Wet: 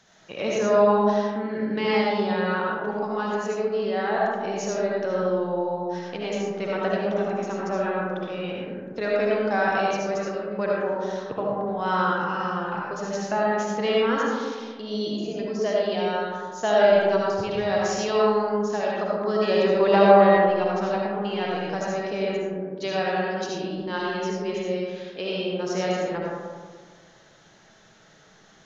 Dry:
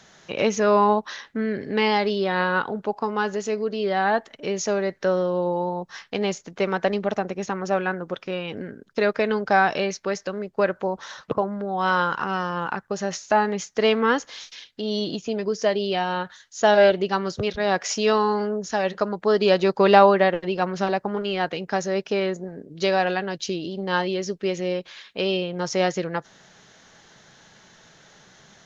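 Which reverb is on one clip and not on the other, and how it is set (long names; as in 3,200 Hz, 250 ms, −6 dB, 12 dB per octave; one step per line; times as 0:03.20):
comb and all-pass reverb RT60 1.7 s, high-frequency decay 0.3×, pre-delay 35 ms, DRR −4.5 dB
level −8 dB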